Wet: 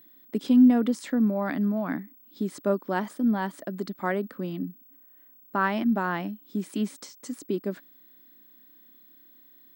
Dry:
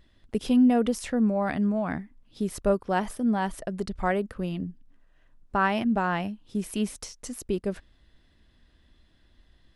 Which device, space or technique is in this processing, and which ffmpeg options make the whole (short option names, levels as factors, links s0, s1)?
old television with a line whistle: -af "highpass=f=180:w=0.5412,highpass=f=180:w=1.3066,equalizer=f=290:t=q:w=4:g=8,equalizer=f=460:t=q:w=4:g=-5,equalizer=f=750:t=q:w=4:g=-5,equalizer=f=2700:t=q:w=4:g=-7,equalizer=f=5800:t=q:w=4:g=-6,lowpass=f=8200:w=0.5412,lowpass=f=8200:w=1.3066,aeval=exprs='val(0)+0.00251*sin(2*PI*15734*n/s)':c=same"